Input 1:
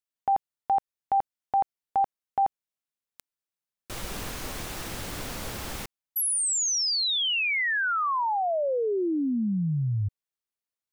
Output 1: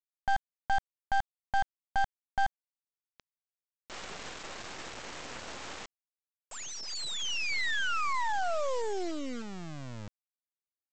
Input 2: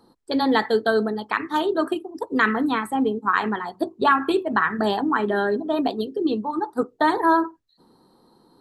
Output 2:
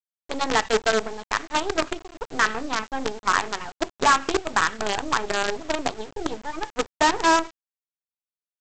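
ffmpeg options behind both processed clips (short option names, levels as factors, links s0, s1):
-af "bass=f=250:g=-15,treble=f=4000:g=-13,aresample=16000,acrusher=bits=4:dc=4:mix=0:aa=0.000001,aresample=44100"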